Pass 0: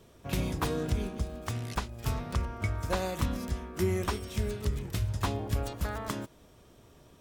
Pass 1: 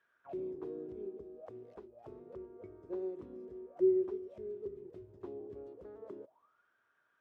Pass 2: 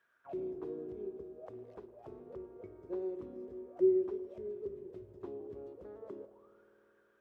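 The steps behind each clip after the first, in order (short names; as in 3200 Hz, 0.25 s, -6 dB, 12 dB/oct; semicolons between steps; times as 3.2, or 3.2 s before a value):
auto-wah 380–1700 Hz, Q 15, down, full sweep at -31 dBFS; gain +5 dB
reverb RT60 3.6 s, pre-delay 52 ms, DRR 12 dB; gain +1 dB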